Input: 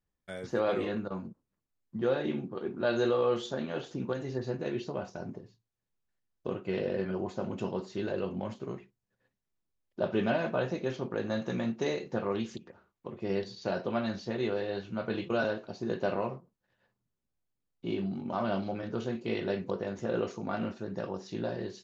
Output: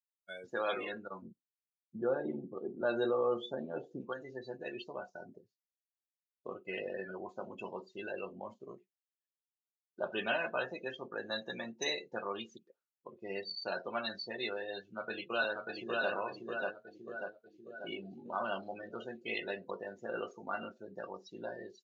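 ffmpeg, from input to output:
ffmpeg -i in.wav -filter_complex "[0:a]asettb=1/sr,asplit=3[link_01][link_02][link_03];[link_01]atrim=end=1.224[link_04];[link_02]atrim=start=1.22:end=4.01,asetpts=PTS-STARTPTS,afade=type=in:duration=0.004:curve=qsin,afade=type=out:start_time=2.786:duration=0.004:curve=qsin,tiltshelf=frequency=830:gain=8.5[link_05];[link_03]atrim=start=4.006[link_06];[link_04][link_05]acrossfade=duration=0.004:curve1=hsin:curve2=qsin[link_07];[link_07][link_06]acrossfade=duration=0.004:curve1=qsin:curve2=hsin,asplit=2[link_08][link_09];[link_09]afade=type=in:start_time=14.96:duration=0.01,afade=type=out:start_time=16.11:duration=0.01,aecho=0:1:590|1180|1770|2360|2950|3540|4130|4720|5310:0.794328|0.476597|0.285958|0.171575|0.102945|0.061767|0.0370602|0.0222361|0.0133417[link_10];[link_08][link_10]amix=inputs=2:normalize=0,afftdn=noise_reduction=33:noise_floor=-40,aderivative,volume=15.5dB" out.wav

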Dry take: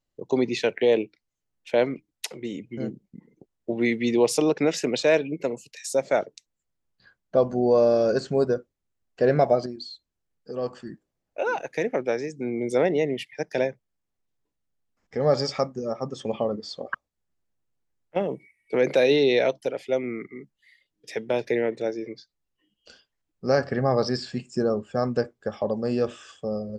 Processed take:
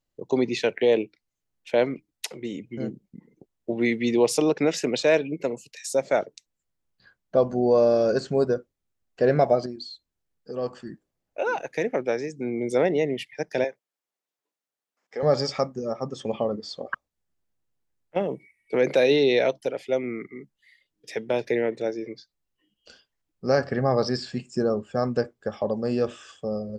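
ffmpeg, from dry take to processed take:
ffmpeg -i in.wav -filter_complex "[0:a]asettb=1/sr,asplit=3[link_01][link_02][link_03];[link_01]atrim=end=13.644[link_04];[link_02]atrim=start=13.64:end=15.23,asetpts=PTS-STARTPTS,afade=type=in:duration=0.004:curve=qsin,afade=type=out:start_time=1.586:duration=0.004:curve=qsin,highpass=450[link_05];[link_03]atrim=start=15.226[link_06];[link_04][link_05]acrossfade=duration=0.004:curve1=hsin:curve2=qsin[link_07];[link_07][link_06]acrossfade=duration=0.004:curve1=qsin:curve2=hsin" out.wav

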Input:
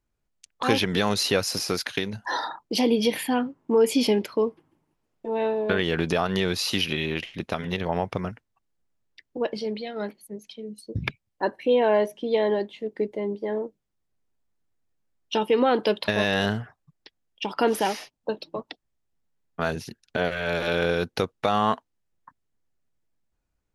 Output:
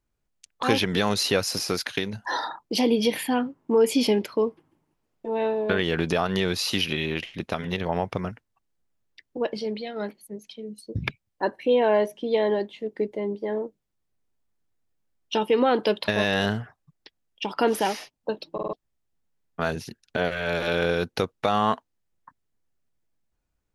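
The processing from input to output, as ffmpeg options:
ffmpeg -i in.wav -filter_complex "[0:a]asplit=5[link_01][link_02][link_03][link_04][link_05];[link_01]atrim=end=18.582[link_06];[link_02]atrim=start=18.528:end=18.582[link_07];[link_03]atrim=start=18.528:end=18.582[link_08];[link_04]atrim=start=18.528:end=18.582[link_09];[link_05]atrim=start=18.728[link_10];[link_06][link_07]acrossfade=duration=0.004:curve1=hsin:curve2=hsin[link_11];[link_11][link_08]acrossfade=duration=0.004:curve1=hsin:curve2=hsin[link_12];[link_12][link_09]acrossfade=duration=0.004:curve1=hsin:curve2=hsin[link_13];[link_13][link_10]acrossfade=duration=0.004:curve1=hsin:curve2=hsin" out.wav

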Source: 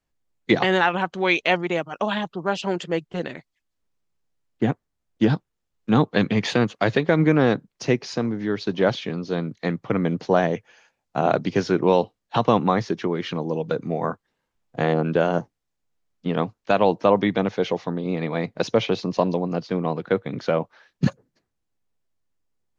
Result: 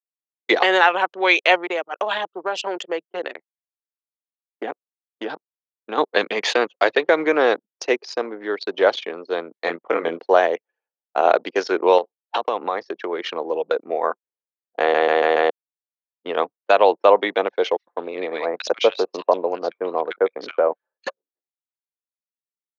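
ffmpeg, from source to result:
ffmpeg -i in.wav -filter_complex "[0:a]asettb=1/sr,asplit=3[link_01][link_02][link_03];[link_01]atrim=end=1.574[link_04];[link_02]atrim=start=1.57:end=5.98,asetpts=PTS-STARTPTS,afade=type=in:duration=0.004:curve=qsin,afade=type=out:start_time=4.406:duration=0.004:curve=qsin,acompressor=threshold=-21dB:ratio=4:attack=3.2:release=140:knee=1:detection=peak[link_05];[link_03]atrim=start=5.976[link_06];[link_04][link_05]acrossfade=duration=0.004:curve1=hsin:curve2=qsin[link_07];[link_07][link_06]acrossfade=duration=0.004:curve1=qsin:curve2=hsin,asettb=1/sr,asplit=3[link_08][link_09][link_10];[link_08]atrim=end=9.644[link_11];[link_09]atrim=start=9.64:end=10.19,asetpts=PTS-STARTPTS,afade=type=in:duration=0.004:curve=qsin,afade=type=out:start_time=0.546:duration=0.004:curve=qsin,asplit=2[link_12][link_13];[link_13]adelay=24,volume=-4dB[link_14];[link_12][link_14]amix=inputs=2:normalize=0,atrim=end_sample=24255[link_15];[link_10]atrim=start=10.186[link_16];[link_11][link_15]acrossfade=duration=0.004:curve1=hsin:curve2=qsin[link_17];[link_17][link_16]acrossfade=duration=0.004:curve1=qsin:curve2=hsin,asettb=1/sr,asplit=3[link_18][link_19][link_20];[link_18]atrim=end=11.984[link_21];[link_19]atrim=start=11.98:end=13.13,asetpts=PTS-STARTPTS,afade=type=in:duration=0.004:curve=qsin,afade=type=out:start_time=1.146:duration=0.004:curve=qsin,acompressor=threshold=-21dB:ratio=4:attack=3.2:release=140:knee=1:detection=peak[link_22];[link_20]atrim=start=13.126[link_23];[link_21][link_22]acrossfade=duration=0.004:curve1=hsin:curve2=qsin[link_24];[link_24][link_23]acrossfade=duration=0.004:curve1=qsin:curve2=hsin,asettb=1/sr,asplit=3[link_25][link_26][link_27];[link_25]atrim=end=17.774[link_28];[link_26]atrim=start=17.77:end=21.07,asetpts=PTS-STARTPTS,afade=type=in:duration=0.004:curve=qsin,afade=type=out:start_time=3.296:duration=0.004:curve=qsin,acrossover=split=1600[link_29][link_30];[link_29]adelay=100[link_31];[link_31][link_30]amix=inputs=2:normalize=0,atrim=end_sample=145530[link_32];[link_27]atrim=start=21.066[link_33];[link_28][link_32]acrossfade=duration=0.004:curve1=hsin:curve2=qsin[link_34];[link_34][link_33]acrossfade=duration=0.004:curve1=qsin:curve2=hsin,asplit=6[link_35][link_36][link_37][link_38][link_39][link_40];[link_35]atrim=end=14.942[link_41];[link_36]atrim=start=14.798:end=14.942[link_42];[link_37]atrim=start=14.798:end=14.942[link_43];[link_38]atrim=start=14.798:end=14.942[link_44];[link_39]atrim=start=14.798:end=14.942[link_45];[link_40]atrim=start=15.498[link_46];[link_41][link_42]acrossfade=duration=0.004:curve1=hsin:curve2=hsin[link_47];[link_47][link_43]acrossfade=duration=0.004:curve1=hsin:curve2=hsin[link_48];[link_48][link_44]acrossfade=duration=0.004:curve1=hsin:curve2=hsin[link_49];[link_49][link_45]acrossfade=duration=0.004:curve1=hsin:curve2=hsin[link_50];[link_50][link_46]acrossfade=duration=0.004:curve1=hsin:curve2=hsin,anlmdn=10,highpass=frequency=410:width=0.5412,highpass=frequency=410:width=1.3066,volume=5dB" out.wav

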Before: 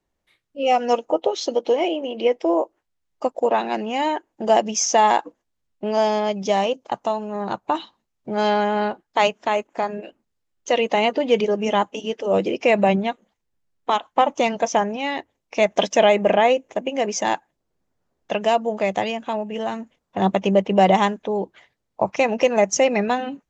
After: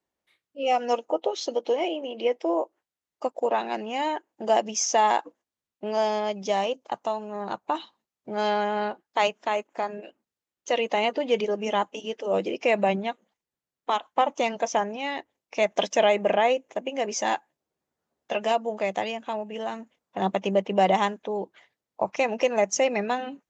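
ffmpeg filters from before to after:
ffmpeg -i in.wav -filter_complex "[0:a]asettb=1/sr,asplit=3[link_01][link_02][link_03];[link_01]atrim=end=17.104[link_04];[link_02]atrim=start=17.1:end=18.52,asetpts=PTS-STARTPTS,afade=type=in:duration=0.004:curve=qsin,afade=type=out:start_time=1.416:duration=0.004:curve=qsin,asplit=2[link_05][link_06];[link_06]adelay=13,volume=-4.5dB[link_07];[link_05][link_07]amix=inputs=2:normalize=0,atrim=end_sample=62622[link_08];[link_03]atrim=start=18.516[link_09];[link_04][link_08]acrossfade=duration=0.004:curve1=hsin:curve2=qsin[link_10];[link_10][link_09]acrossfade=duration=0.004:curve1=qsin:curve2=hsin,highpass=frequency=250:poles=1,volume=-4.5dB" out.wav

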